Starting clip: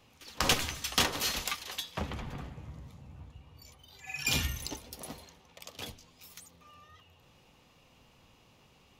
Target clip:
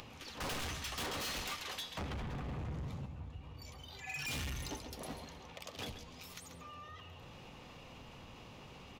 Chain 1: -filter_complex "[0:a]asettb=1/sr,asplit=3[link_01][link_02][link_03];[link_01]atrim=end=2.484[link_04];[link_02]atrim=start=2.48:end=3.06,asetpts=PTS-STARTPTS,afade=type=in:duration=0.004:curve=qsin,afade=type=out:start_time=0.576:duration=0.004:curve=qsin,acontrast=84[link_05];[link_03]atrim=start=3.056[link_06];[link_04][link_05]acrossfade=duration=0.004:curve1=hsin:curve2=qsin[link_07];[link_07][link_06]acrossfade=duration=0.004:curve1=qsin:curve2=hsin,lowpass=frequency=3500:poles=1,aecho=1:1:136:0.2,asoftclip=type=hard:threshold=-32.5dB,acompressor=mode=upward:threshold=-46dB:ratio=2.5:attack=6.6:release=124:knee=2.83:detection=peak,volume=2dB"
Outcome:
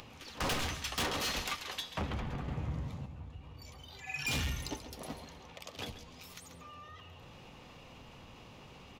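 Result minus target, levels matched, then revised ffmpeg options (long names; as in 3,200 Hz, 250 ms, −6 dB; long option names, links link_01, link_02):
hard clipping: distortion −4 dB
-filter_complex "[0:a]asettb=1/sr,asplit=3[link_01][link_02][link_03];[link_01]atrim=end=2.484[link_04];[link_02]atrim=start=2.48:end=3.06,asetpts=PTS-STARTPTS,afade=type=in:duration=0.004:curve=qsin,afade=type=out:start_time=0.576:duration=0.004:curve=qsin,acontrast=84[link_05];[link_03]atrim=start=3.056[link_06];[link_04][link_05]acrossfade=duration=0.004:curve1=hsin:curve2=qsin[link_07];[link_07][link_06]acrossfade=duration=0.004:curve1=qsin:curve2=hsin,lowpass=frequency=3500:poles=1,aecho=1:1:136:0.2,asoftclip=type=hard:threshold=-40dB,acompressor=mode=upward:threshold=-46dB:ratio=2.5:attack=6.6:release=124:knee=2.83:detection=peak,volume=2dB"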